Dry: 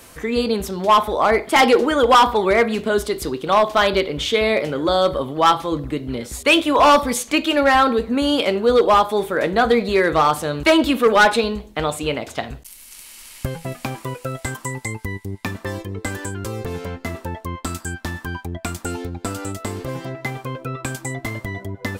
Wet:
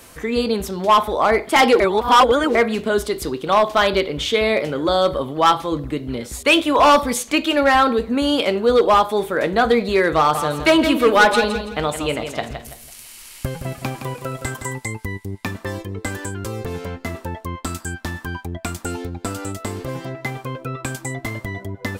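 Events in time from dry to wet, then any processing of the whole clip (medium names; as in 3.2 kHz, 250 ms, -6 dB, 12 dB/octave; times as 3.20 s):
1.80–2.55 s: reverse
10.18–14.77 s: feedback delay 166 ms, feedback 32%, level -8.5 dB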